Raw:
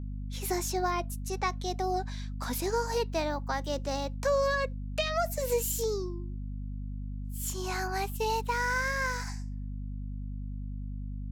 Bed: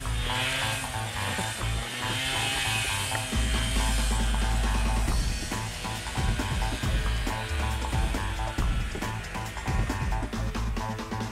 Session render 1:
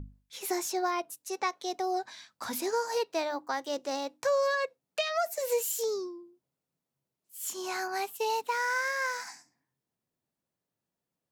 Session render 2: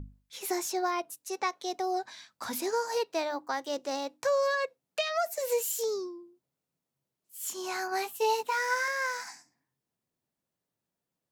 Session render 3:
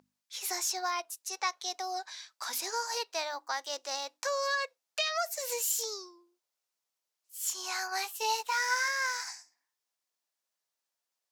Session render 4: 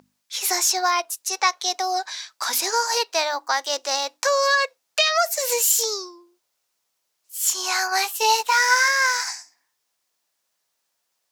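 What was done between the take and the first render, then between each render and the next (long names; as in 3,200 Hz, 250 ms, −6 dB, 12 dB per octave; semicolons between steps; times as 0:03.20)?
mains-hum notches 50/100/150/200/250/300 Hz
0:07.90–0:08.88: double-tracking delay 16 ms −3.5 dB
high-pass filter 820 Hz 12 dB per octave; parametric band 5,500 Hz +6 dB 1.1 octaves
level +12 dB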